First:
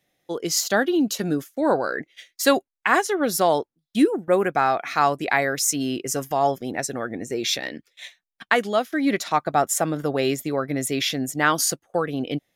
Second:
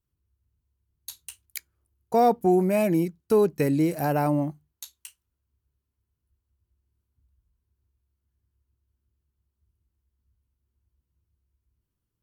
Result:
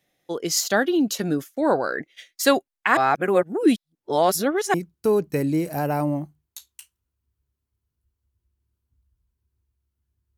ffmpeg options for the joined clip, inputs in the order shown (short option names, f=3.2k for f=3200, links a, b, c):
-filter_complex "[0:a]apad=whole_dur=10.37,atrim=end=10.37,asplit=2[a][b];[a]atrim=end=2.972[c];[b]atrim=start=2.968:end=4.742,asetpts=PTS-STARTPTS,areverse[d];[1:a]atrim=start=2.998:end=8.63[e];[c][d]acrossfade=d=0.004:c1=hsin:c2=hsin[f];[f][e]acrossfade=d=0.004:c1=hsin:c2=hsin"